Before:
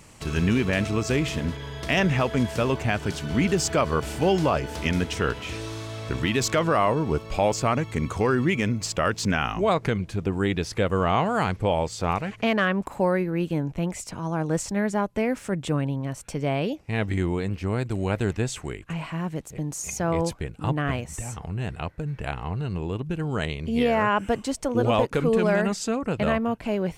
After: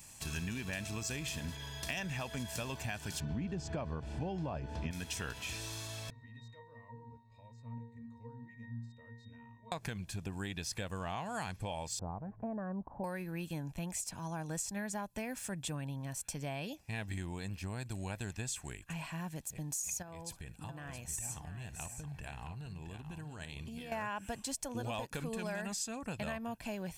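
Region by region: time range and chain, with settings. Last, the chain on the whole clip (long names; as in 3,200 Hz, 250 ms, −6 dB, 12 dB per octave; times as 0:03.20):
0:03.20–0:04.91: low-pass filter 4,300 Hz + tilt shelving filter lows +8.5 dB, about 1,100 Hz
0:06.10–0:09.72: resonances in every octave A#, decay 0.6 s + one half of a high-frequency compander encoder only
0:11.99–0:13.04: Bessel low-pass filter 690 Hz, order 6 + upward compression, threshold −34 dBFS
0:20.02–0:23.92: downward compressor 12 to 1, threshold −30 dBFS + multi-tap delay 56/670 ms −17.5/−9 dB
whole clip: first-order pre-emphasis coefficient 0.8; comb filter 1.2 ms, depth 44%; downward compressor, threshold −37 dBFS; level +1.5 dB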